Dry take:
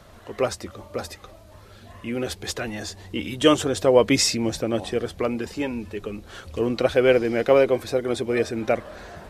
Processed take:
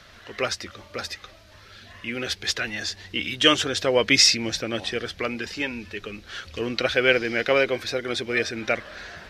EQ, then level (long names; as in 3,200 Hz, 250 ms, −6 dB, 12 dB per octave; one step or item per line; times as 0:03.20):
flat-topped bell 2,900 Hz +12 dB 2.4 octaves
−5.0 dB